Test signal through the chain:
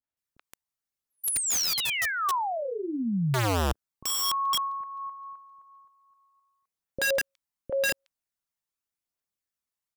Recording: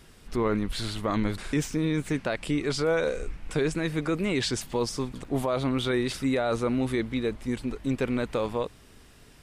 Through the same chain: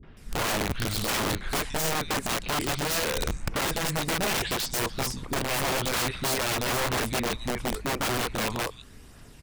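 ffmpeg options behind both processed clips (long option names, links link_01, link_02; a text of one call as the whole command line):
ffmpeg -i in.wav -filter_complex "[0:a]acrossover=split=400|3100[link_01][link_02][link_03];[link_02]adelay=30[link_04];[link_03]adelay=170[link_05];[link_01][link_04][link_05]amix=inputs=3:normalize=0,aphaser=in_gain=1:out_gain=1:delay=1.1:decay=0.3:speed=0.87:type=triangular,aeval=exprs='(mod(16.8*val(0)+1,2)-1)/16.8':channel_layout=same,volume=2.5dB" out.wav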